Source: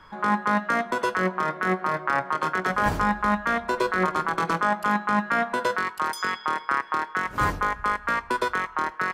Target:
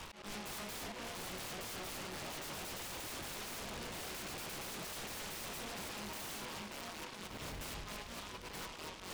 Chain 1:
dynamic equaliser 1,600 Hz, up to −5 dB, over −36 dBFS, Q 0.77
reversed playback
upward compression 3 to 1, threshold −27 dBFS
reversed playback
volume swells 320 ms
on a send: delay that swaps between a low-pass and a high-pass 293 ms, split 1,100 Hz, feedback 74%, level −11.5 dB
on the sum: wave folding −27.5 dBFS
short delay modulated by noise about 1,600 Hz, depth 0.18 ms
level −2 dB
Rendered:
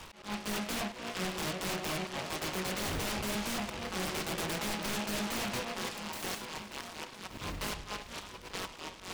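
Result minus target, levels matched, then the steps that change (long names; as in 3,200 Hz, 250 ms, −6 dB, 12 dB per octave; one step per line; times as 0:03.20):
wave folding: distortion −13 dB
change: wave folding −37.5 dBFS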